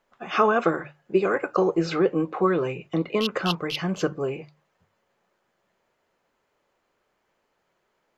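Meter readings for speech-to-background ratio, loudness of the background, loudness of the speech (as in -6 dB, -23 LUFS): 7.0 dB, -32.0 LUFS, -25.0 LUFS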